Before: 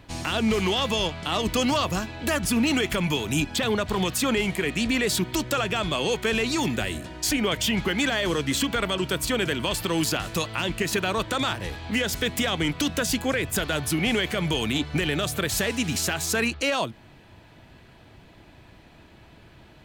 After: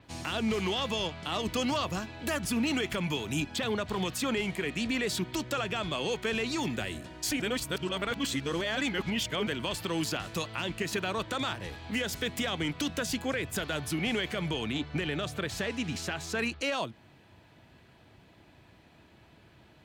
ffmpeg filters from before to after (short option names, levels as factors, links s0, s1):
-filter_complex "[0:a]asettb=1/sr,asplit=3[s0][s1][s2];[s0]atrim=end=14.494[s3];[s1]atrim=start=14.49:end=16.39,asetpts=PTS-STARTPTS,afade=t=in:d=0.004:c=qsin,afade=t=out:st=1.896:d=0.004:c=qsin,highshelf=f=7300:g=-11.5[s4];[s2]atrim=start=16.386[s5];[s3][s4]acrossfade=d=0.004:c1=hsin:c2=qsin[s6];[s6][s5]acrossfade=d=0.004:c1=qsin:c2=hsin,asplit=3[s7][s8][s9];[s7]atrim=end=7.402[s10];[s8]atrim=start=7.398:end=9.472,asetpts=PTS-STARTPTS,areverse[s11];[s9]atrim=start=9.468[s12];[s10][s11]acrossfade=d=0.004:c1=hsin:c2=hsin[s13];[s13][s12]acrossfade=d=0.004:c1=hsin:c2=hsin,highpass=64,adynamicequalizer=threshold=0.00708:dfrequency=7700:dqfactor=0.7:tfrequency=7700:tqfactor=0.7:attack=5:release=100:ratio=0.375:range=3:mode=cutabove:tftype=highshelf,volume=0.473"